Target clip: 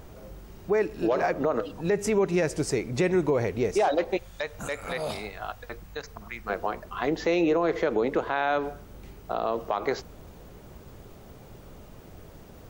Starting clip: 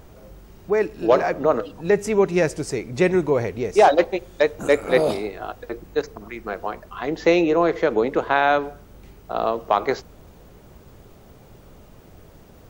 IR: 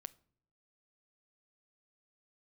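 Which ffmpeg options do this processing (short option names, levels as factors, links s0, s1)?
-filter_complex "[0:a]alimiter=limit=0.168:level=0:latency=1:release=116,asettb=1/sr,asplit=3[s0][s1][s2];[s0]atrim=end=4.174[s3];[s1]atrim=start=4.17:end=6.5,asetpts=PTS-STARTPTS,afade=t=in:d=0.004:c=qsin,afade=t=out:st=2.326:d=0.004:c=qsin,equalizer=f=350:t=o:w=1.3:g=-14.5[s4];[s2]atrim=start=6.496[s5];[s3][s4]acrossfade=d=0.004:c1=hsin:c2=qsin[s6];[s6][s5]acrossfade=d=0.004:c1=qsin:c2=hsin"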